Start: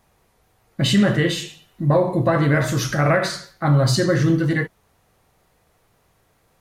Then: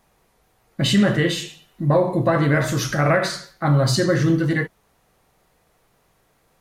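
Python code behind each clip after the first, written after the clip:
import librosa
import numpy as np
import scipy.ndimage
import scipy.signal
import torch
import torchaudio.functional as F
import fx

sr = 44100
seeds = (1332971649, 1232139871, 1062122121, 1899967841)

y = fx.peak_eq(x, sr, hz=89.0, db=-9.0, octaves=0.49)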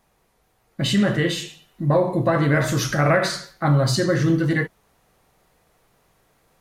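y = fx.rider(x, sr, range_db=3, speed_s=0.5)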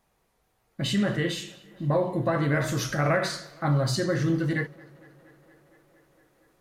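y = fx.echo_tape(x, sr, ms=232, feedback_pct=87, wet_db=-22, lp_hz=4400.0, drive_db=13.0, wow_cents=29)
y = y * librosa.db_to_amplitude(-6.0)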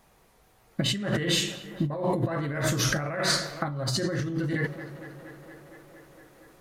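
y = fx.over_compress(x, sr, threshold_db=-32.0, ratio=-1.0)
y = y * librosa.db_to_amplitude(4.0)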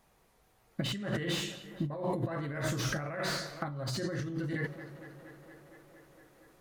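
y = fx.slew_limit(x, sr, full_power_hz=160.0)
y = y * librosa.db_to_amplitude(-6.5)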